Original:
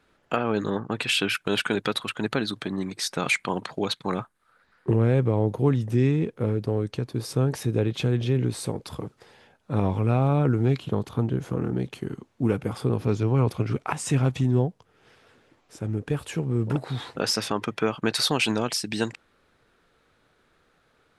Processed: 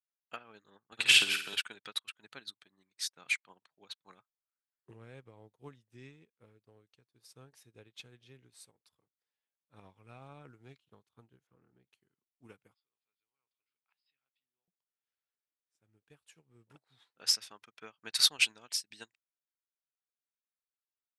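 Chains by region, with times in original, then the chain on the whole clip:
0:00.92–0:01.56: flutter between parallel walls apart 8.9 metres, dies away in 0.8 s + multiband upward and downward compressor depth 70%
0:03.13–0:04.05: high-pass filter 63 Hz + high-shelf EQ 2,800 Hz −6 dB
0:11.47–0:11.88: high-frequency loss of the air 320 metres + one half of a high-frequency compander encoder only
0:12.74–0:14.68: treble cut that deepens with the level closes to 2,500 Hz, closed at −18 dBFS + linear-phase brick-wall low-pass 5,200 Hz + first difference
whole clip: tilt shelving filter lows −8.5 dB, about 930 Hz; expander for the loud parts 2.5 to 1, over −40 dBFS; level −5.5 dB

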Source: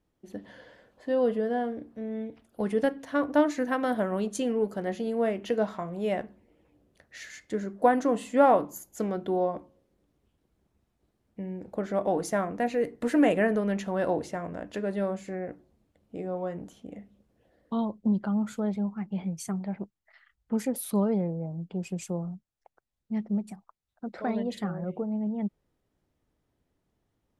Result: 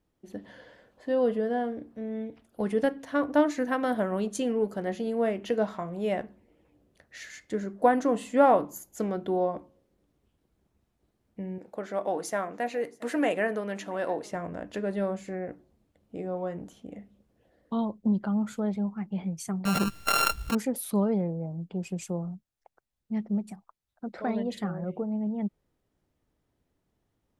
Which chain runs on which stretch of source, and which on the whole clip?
0:11.58–0:14.32: high-pass filter 510 Hz 6 dB per octave + single-tap delay 676 ms −23.5 dB
0:19.65–0:20.55: samples sorted by size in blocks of 32 samples + envelope flattener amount 100%
whole clip: no processing

